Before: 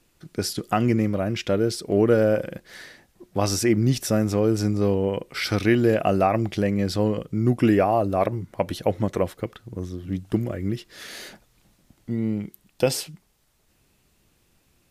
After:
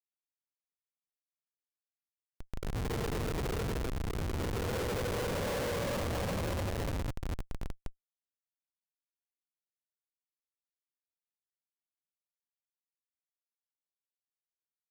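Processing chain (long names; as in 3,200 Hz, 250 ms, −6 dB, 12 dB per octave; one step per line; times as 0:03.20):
lower of the sound and its delayed copy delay 2.1 ms
extreme stretch with random phases 47×, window 0.05 s, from 0:09.10
comparator with hysteresis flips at −24 dBFS
level −5 dB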